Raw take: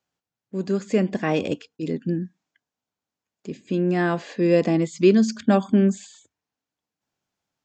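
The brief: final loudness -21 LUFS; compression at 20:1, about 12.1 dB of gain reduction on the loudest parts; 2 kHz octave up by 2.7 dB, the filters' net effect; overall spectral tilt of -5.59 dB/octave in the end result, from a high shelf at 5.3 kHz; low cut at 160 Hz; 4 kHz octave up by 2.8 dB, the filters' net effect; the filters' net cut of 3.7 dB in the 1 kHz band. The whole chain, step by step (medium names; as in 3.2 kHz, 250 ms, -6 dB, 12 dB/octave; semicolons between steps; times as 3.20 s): high-pass 160 Hz; peaking EQ 1 kHz -6.5 dB; peaking EQ 2 kHz +5 dB; peaking EQ 4 kHz +4.5 dB; treble shelf 5.3 kHz -5 dB; compression 20:1, threshold -23 dBFS; trim +9 dB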